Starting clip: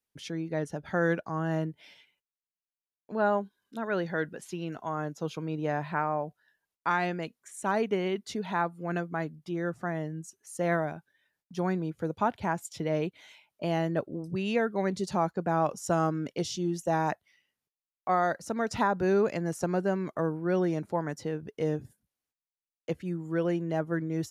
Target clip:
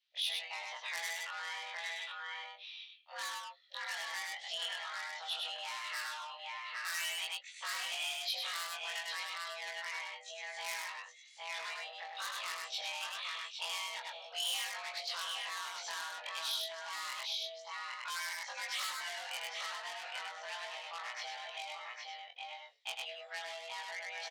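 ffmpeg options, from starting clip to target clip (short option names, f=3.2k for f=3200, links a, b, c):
-filter_complex "[0:a]afftfilt=real='re':imag='-im':win_size=2048:overlap=0.75,asplit=2[a][b];[b]adelay=15,volume=-10.5dB[c];[a][c]amix=inputs=2:normalize=0,asplit=2[d][e];[e]aecho=0:1:810:0.398[f];[d][f]amix=inputs=2:normalize=0,highpass=f=220:t=q:w=0.5412,highpass=f=220:t=q:w=1.307,lowpass=f=3.4k:t=q:w=0.5176,lowpass=f=3.4k:t=q:w=0.7071,lowpass=f=3.4k:t=q:w=1.932,afreqshift=310,crystalizer=i=9:c=0,highshelf=f=2.2k:g=7,asoftclip=type=tanh:threshold=-26.5dB,asplit=2[g][h];[h]aecho=0:1:101:0.668[i];[g][i]amix=inputs=2:normalize=0,acompressor=threshold=-35dB:ratio=6,aderivative,volume=9dB"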